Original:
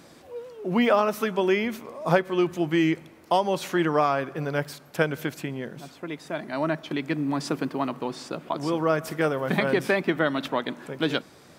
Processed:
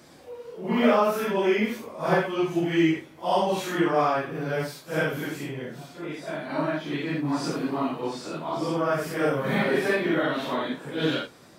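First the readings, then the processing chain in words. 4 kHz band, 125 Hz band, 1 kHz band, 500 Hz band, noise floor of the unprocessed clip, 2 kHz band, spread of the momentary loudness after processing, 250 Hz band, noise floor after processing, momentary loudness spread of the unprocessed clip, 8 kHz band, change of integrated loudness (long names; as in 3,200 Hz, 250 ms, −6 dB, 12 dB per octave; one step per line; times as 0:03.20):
0.0 dB, −0.5 dB, 0.0 dB, 0.0 dB, −52 dBFS, 0.0 dB, 11 LU, 0.0 dB, −50 dBFS, 12 LU, 0.0 dB, 0.0 dB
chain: random phases in long frames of 200 ms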